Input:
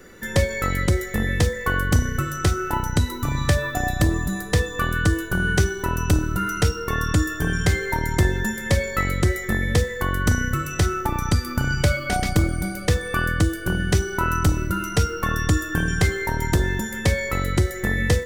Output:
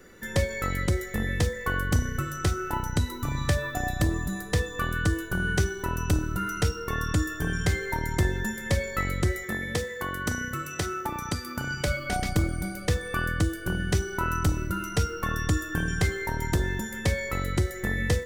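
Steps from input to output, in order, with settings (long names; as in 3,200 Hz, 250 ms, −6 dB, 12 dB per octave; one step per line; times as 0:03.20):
0:09.43–0:11.88: high-pass filter 210 Hz 6 dB per octave
level −5.5 dB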